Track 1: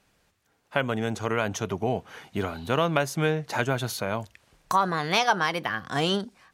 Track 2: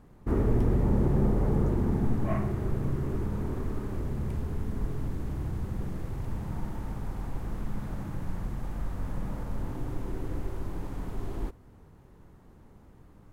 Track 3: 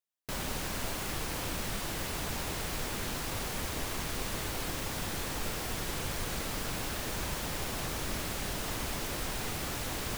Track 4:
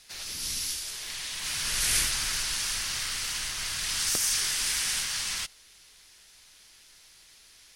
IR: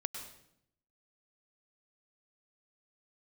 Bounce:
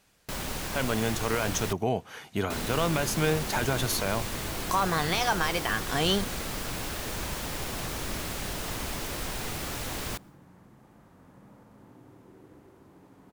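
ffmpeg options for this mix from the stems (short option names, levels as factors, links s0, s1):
-filter_complex "[0:a]highshelf=f=4300:g=6.5,alimiter=limit=0.178:level=0:latency=1:release=24,volume=0.944[s0];[1:a]highpass=160,adelay=2200,volume=0.158,asplit=2[s1][s2];[s2]volume=0.422[s3];[2:a]volume=1.12,asplit=3[s4][s5][s6];[s4]atrim=end=1.73,asetpts=PTS-STARTPTS,afade=t=out:st=1.726:d=0.004:c=hsin[s7];[s5]atrim=start=1.73:end=2.5,asetpts=PTS-STARTPTS,volume=0[s8];[s6]atrim=start=2.5,asetpts=PTS-STARTPTS,afade=t=in:d=0.004:c=hsin[s9];[s7][s8][s9]concat=n=3:v=0:a=1,asplit=2[s10][s11];[s11]volume=0.0631[s12];[4:a]atrim=start_sample=2205[s13];[s3][s12]amix=inputs=2:normalize=0[s14];[s14][s13]afir=irnorm=-1:irlink=0[s15];[s0][s1][s10][s15]amix=inputs=4:normalize=0"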